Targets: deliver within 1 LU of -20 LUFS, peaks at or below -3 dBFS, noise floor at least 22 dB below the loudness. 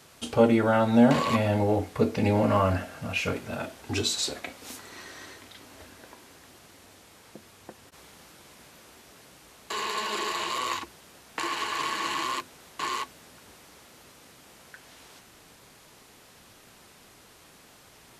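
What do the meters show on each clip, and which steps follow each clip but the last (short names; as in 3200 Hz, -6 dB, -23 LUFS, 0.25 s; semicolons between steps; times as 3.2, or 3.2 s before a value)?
loudness -26.5 LUFS; peak -7.0 dBFS; loudness target -20.0 LUFS
-> gain +6.5 dB; limiter -3 dBFS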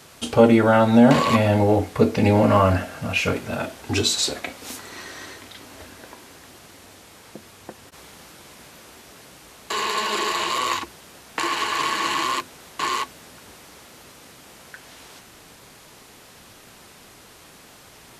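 loudness -20.5 LUFS; peak -3.0 dBFS; noise floor -48 dBFS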